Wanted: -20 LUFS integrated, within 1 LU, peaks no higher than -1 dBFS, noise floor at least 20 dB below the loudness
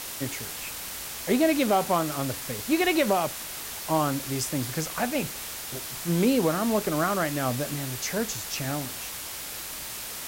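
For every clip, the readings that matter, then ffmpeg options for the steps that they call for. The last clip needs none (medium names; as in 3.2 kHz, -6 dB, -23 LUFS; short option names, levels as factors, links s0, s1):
noise floor -37 dBFS; noise floor target -48 dBFS; loudness -27.5 LUFS; peak level -12.0 dBFS; loudness target -20.0 LUFS
-> -af "afftdn=nr=11:nf=-37"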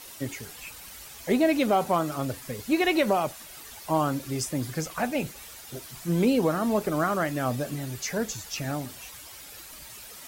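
noise floor -45 dBFS; noise floor target -48 dBFS
-> -af "afftdn=nr=6:nf=-45"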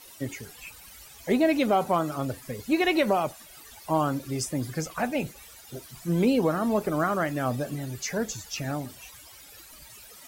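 noise floor -49 dBFS; loudness -27.5 LUFS; peak level -12.5 dBFS; loudness target -20.0 LUFS
-> -af "volume=2.37"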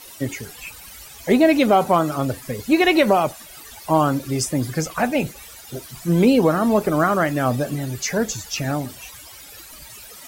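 loudness -20.0 LUFS; peak level -5.0 dBFS; noise floor -42 dBFS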